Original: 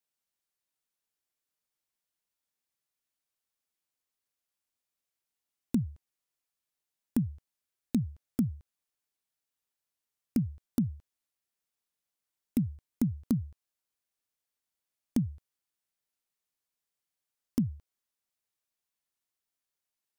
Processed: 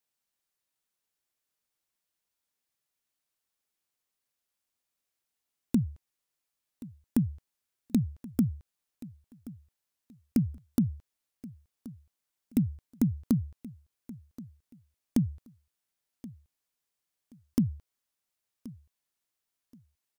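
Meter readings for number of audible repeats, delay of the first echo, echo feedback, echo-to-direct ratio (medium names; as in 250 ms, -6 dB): 2, 1077 ms, 24%, -18.0 dB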